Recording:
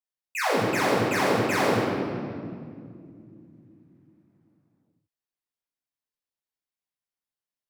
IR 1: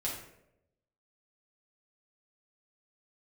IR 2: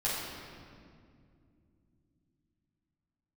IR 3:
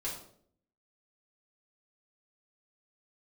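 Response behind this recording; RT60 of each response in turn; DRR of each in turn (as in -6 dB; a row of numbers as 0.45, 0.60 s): 2; 0.85, 2.3, 0.60 s; -6.0, -8.5, -7.0 dB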